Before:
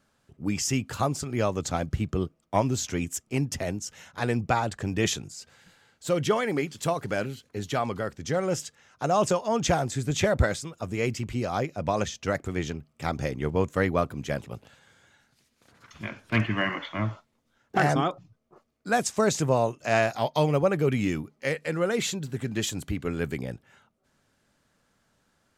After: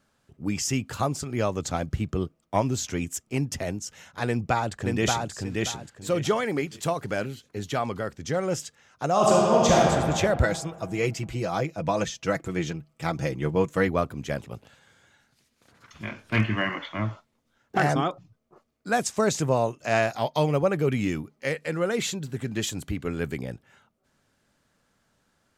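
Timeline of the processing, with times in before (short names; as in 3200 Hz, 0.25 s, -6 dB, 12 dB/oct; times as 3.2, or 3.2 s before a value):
4.27–5.31 echo throw 0.58 s, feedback 25%, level -2.5 dB
9.12–9.78 reverb throw, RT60 2.2 s, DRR -4.5 dB
10.43–13.88 comb 6.1 ms, depth 59%
16.04–16.56 doubler 28 ms -6.5 dB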